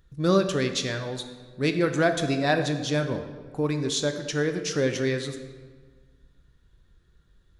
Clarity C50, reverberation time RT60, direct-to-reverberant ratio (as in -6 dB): 8.5 dB, 1.5 s, 6.5 dB